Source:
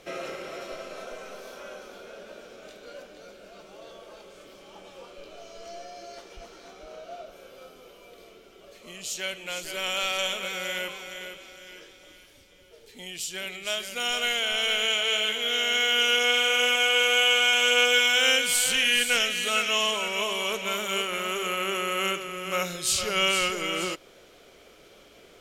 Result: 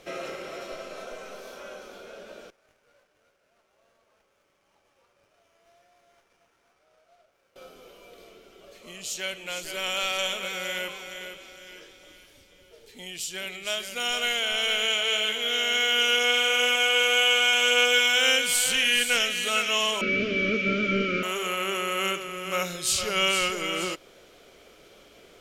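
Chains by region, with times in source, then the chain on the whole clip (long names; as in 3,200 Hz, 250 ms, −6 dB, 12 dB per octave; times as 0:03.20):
0:02.50–0:07.56: low-pass filter 1,700 Hz 6 dB per octave + first difference + windowed peak hold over 9 samples
0:20.01–0:21.23: linear delta modulator 32 kbit/s, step −41 dBFS + Chebyshev band-stop filter 610–1,300 Hz, order 4 + hollow resonant body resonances 250/1,100/2,300 Hz, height 15 dB, ringing for 25 ms
whole clip: no processing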